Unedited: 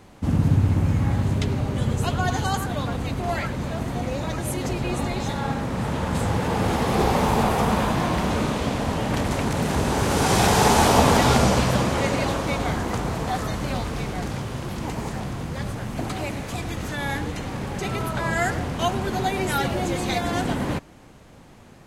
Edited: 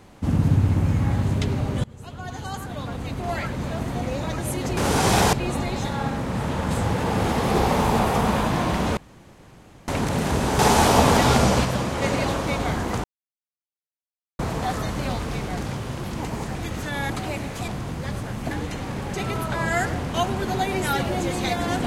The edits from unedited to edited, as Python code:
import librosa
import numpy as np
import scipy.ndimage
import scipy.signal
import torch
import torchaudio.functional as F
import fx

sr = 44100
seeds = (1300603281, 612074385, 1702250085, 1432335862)

y = fx.edit(x, sr, fx.fade_in_from(start_s=1.84, length_s=1.82, floor_db=-24.0),
    fx.room_tone_fill(start_s=8.41, length_s=0.91),
    fx.move(start_s=10.03, length_s=0.56, to_s=4.77),
    fx.clip_gain(start_s=11.65, length_s=0.37, db=-3.5),
    fx.insert_silence(at_s=13.04, length_s=1.35),
    fx.swap(start_s=15.2, length_s=0.83, other_s=16.61, other_length_s=0.55), tone=tone)